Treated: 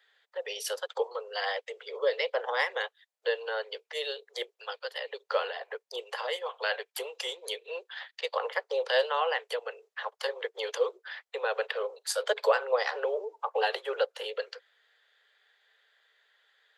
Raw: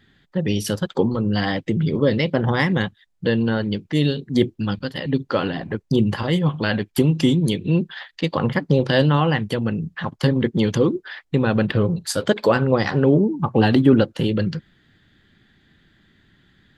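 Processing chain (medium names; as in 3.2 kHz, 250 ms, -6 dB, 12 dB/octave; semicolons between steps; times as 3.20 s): steep high-pass 440 Hz 96 dB/octave; trim -6 dB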